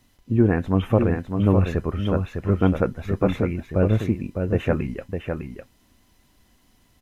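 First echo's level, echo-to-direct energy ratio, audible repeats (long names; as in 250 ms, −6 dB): −6.0 dB, −6.0 dB, 1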